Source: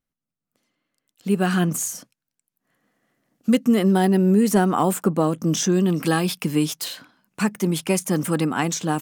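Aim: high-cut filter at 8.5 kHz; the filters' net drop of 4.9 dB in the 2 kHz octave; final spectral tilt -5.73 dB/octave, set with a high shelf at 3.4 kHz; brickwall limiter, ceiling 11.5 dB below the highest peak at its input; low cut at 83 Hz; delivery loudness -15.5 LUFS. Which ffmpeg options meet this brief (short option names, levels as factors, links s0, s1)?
-af "highpass=83,lowpass=8500,equalizer=f=2000:t=o:g=-5,highshelf=f=3400:g=-6,volume=3.98,alimiter=limit=0.501:level=0:latency=1"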